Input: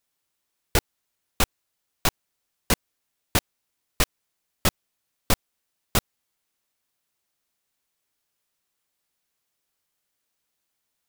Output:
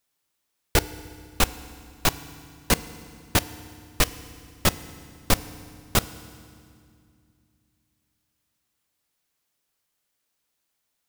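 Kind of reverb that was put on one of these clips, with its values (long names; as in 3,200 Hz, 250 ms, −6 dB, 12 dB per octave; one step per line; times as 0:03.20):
feedback delay network reverb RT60 2.2 s, low-frequency decay 1.55×, high-frequency decay 0.9×, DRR 14.5 dB
level +1 dB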